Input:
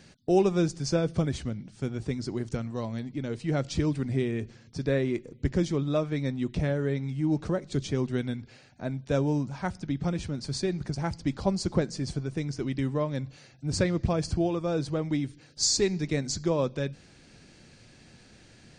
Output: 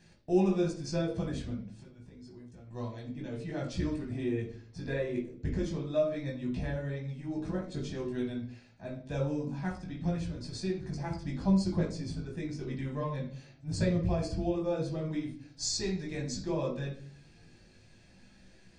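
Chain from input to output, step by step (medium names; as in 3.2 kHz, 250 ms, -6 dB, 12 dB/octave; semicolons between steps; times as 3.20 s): 1.75–2.71 s: compression 12:1, threshold -42 dBFS, peak gain reduction 18 dB; chorus voices 4, 0.28 Hz, delay 18 ms, depth 2.8 ms; reverberation RT60 0.50 s, pre-delay 3 ms, DRR 0.5 dB; trim -7.5 dB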